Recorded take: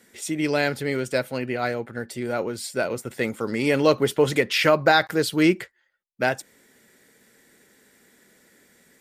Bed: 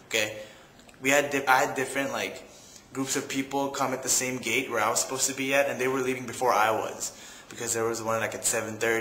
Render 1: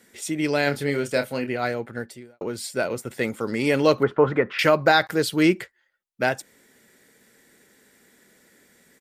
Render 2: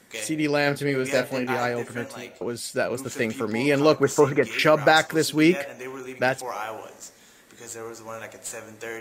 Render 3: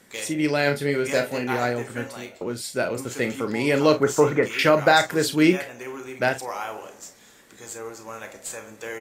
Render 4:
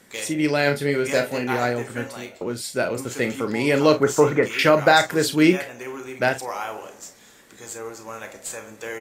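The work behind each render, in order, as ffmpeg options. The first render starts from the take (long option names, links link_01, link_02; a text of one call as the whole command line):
ffmpeg -i in.wav -filter_complex "[0:a]asplit=3[link_01][link_02][link_03];[link_01]afade=type=out:start_time=0.66:duration=0.02[link_04];[link_02]asplit=2[link_05][link_06];[link_06]adelay=28,volume=-7.5dB[link_07];[link_05][link_07]amix=inputs=2:normalize=0,afade=type=in:start_time=0.66:duration=0.02,afade=type=out:start_time=1.47:duration=0.02[link_08];[link_03]afade=type=in:start_time=1.47:duration=0.02[link_09];[link_04][link_08][link_09]amix=inputs=3:normalize=0,asettb=1/sr,asplit=3[link_10][link_11][link_12];[link_10]atrim=end=4.034[link_13];[link_11]atrim=start=4.03:end=4.59,asetpts=PTS-STARTPTS,afade=type=in:duration=0.004:curve=qsin,afade=type=out:start_time=0.556:duration=0.004:curve=qsin,lowpass=frequency=1300:width_type=q:width=2.8[link_14];[link_12]atrim=start=4.586[link_15];[link_13][link_14]acrossfade=duration=0.004:curve1=hsin:curve2=qsin[link_16];[link_16][link_15]acrossfade=duration=0.004:curve1=qsin:curve2=hsin,asplit=2[link_17][link_18];[link_17]atrim=end=2.41,asetpts=PTS-STARTPTS,afade=type=out:start_time=2.01:duration=0.4:curve=qua[link_19];[link_18]atrim=start=2.41,asetpts=PTS-STARTPTS,afade=type=in:duration=0.004:curve=hsin[link_20];[link_19][link_20]concat=n=2:v=0:a=1" out.wav
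ffmpeg -i in.wav -i bed.wav -filter_complex "[1:a]volume=-9dB[link_01];[0:a][link_01]amix=inputs=2:normalize=0" out.wav
ffmpeg -i in.wav -af "aecho=1:1:33|49:0.299|0.2" out.wav
ffmpeg -i in.wav -af "volume=1.5dB" out.wav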